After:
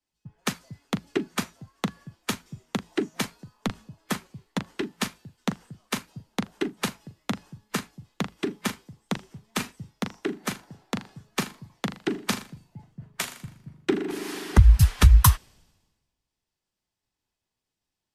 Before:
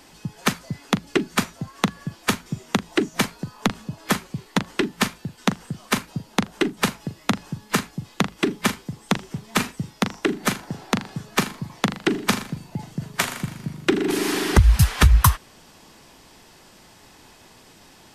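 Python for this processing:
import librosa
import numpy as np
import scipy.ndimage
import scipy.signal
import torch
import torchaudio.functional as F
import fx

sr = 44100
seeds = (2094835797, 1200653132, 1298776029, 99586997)

y = fx.band_widen(x, sr, depth_pct=100)
y = y * librosa.db_to_amplitude(-8.5)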